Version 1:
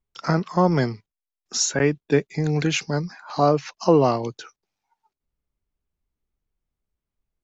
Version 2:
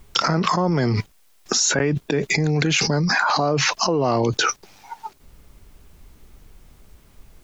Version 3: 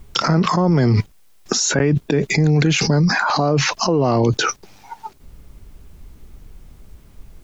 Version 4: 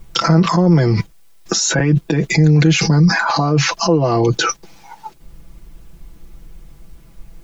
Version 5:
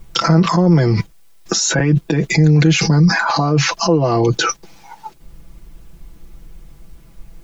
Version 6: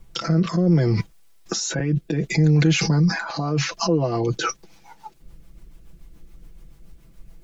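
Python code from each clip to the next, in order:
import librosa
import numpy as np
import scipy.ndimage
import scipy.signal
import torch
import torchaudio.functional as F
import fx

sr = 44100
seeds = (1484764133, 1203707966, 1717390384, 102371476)

y1 = fx.env_flatten(x, sr, amount_pct=100)
y1 = y1 * 10.0 ** (-6.5 / 20.0)
y2 = fx.low_shelf(y1, sr, hz=380.0, db=7.0)
y3 = y2 + 0.74 * np.pad(y2, (int(6.0 * sr / 1000.0), 0))[:len(y2)]
y4 = y3
y5 = fx.rotary_switch(y4, sr, hz=0.65, then_hz=7.0, switch_at_s=3.2)
y5 = y5 * 10.0 ** (-5.0 / 20.0)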